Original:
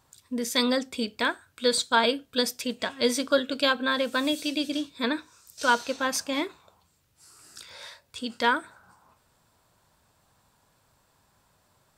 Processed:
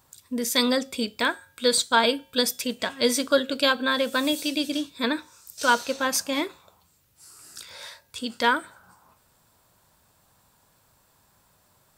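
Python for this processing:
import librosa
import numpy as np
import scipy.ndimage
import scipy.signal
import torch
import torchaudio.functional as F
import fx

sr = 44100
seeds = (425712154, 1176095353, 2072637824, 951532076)

y = fx.high_shelf(x, sr, hz=11000.0, db=11.0)
y = fx.comb_fb(y, sr, f0_hz=180.0, decay_s=0.59, harmonics='odd', damping=0.0, mix_pct=40)
y = y * 10.0 ** (6.0 / 20.0)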